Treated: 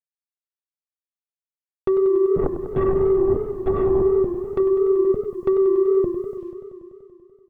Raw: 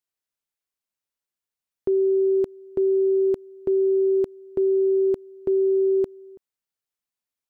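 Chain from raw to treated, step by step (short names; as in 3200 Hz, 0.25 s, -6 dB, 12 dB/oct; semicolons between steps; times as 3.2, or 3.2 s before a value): Wiener smoothing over 41 samples; 2.36–4.02 LPC vocoder at 8 kHz whisper; 4.6–5.05 HPF 200 Hz 6 dB/oct; treble ducked by the level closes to 460 Hz, closed at -19.5 dBFS; air absorption 100 m; comb 1.5 ms, depth 60%; on a send at -17.5 dB: reverb RT60 0.45 s, pre-delay 3 ms; on the sum: sine folder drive 8 dB, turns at -13.5 dBFS; bit-crush 11-bit; warbling echo 96 ms, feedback 79%, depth 153 cents, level -11 dB; gain -1 dB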